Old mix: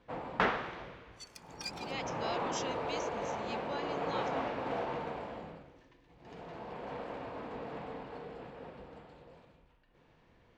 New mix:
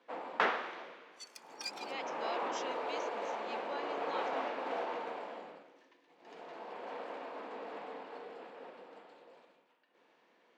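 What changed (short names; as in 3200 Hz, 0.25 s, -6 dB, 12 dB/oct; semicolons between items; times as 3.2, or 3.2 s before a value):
speech: add LPF 2900 Hz 6 dB/oct; master: add Bessel high-pass 380 Hz, order 8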